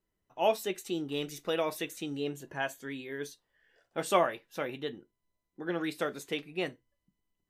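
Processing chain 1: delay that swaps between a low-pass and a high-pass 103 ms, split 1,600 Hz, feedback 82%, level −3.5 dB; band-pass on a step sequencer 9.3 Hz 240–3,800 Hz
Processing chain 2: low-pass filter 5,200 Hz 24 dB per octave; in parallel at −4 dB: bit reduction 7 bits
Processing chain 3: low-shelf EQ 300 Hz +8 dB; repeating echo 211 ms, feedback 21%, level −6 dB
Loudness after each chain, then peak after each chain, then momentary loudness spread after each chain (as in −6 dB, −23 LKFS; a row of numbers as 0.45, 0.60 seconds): −41.0, −30.0, −31.5 LKFS; −19.5, −7.0, −9.0 dBFS; 16, 12, 13 LU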